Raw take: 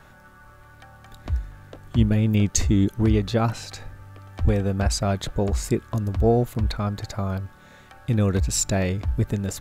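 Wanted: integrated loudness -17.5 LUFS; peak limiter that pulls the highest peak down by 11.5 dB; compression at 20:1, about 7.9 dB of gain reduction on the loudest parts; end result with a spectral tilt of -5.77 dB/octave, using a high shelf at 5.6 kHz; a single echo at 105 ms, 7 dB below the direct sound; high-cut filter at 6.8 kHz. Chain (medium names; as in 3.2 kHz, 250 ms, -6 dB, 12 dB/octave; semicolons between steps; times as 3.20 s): low-pass 6.8 kHz; treble shelf 5.6 kHz -5.5 dB; compression 20:1, threshold -22 dBFS; peak limiter -25.5 dBFS; delay 105 ms -7 dB; trim +16.5 dB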